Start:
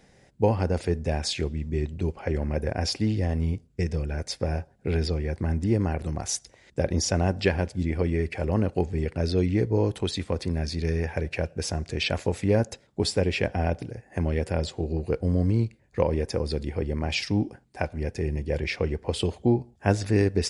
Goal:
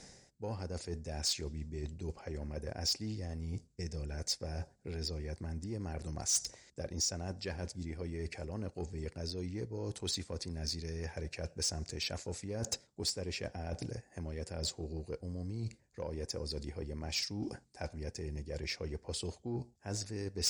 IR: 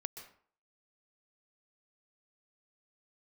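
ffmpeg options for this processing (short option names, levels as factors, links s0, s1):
-af "lowpass=f=8200:w=0.5412,lowpass=f=8200:w=1.3066,areverse,acompressor=threshold=0.0141:ratio=10,areverse,aexciter=amount=4.2:drive=5.8:freq=4400,asoftclip=type=tanh:threshold=0.0473,volume=1.12"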